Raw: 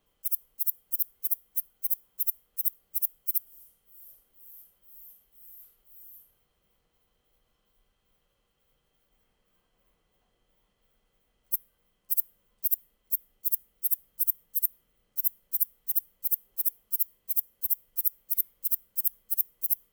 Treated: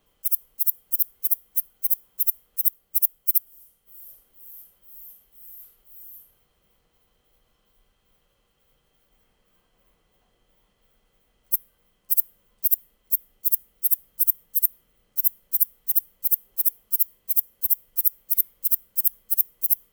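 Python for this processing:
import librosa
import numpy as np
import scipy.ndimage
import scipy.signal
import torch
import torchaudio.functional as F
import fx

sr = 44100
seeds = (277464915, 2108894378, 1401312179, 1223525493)

y = fx.transient(x, sr, attack_db=2, sustain_db=-4, at=(2.66, 4.01))
y = y * 10.0 ** (6.0 / 20.0)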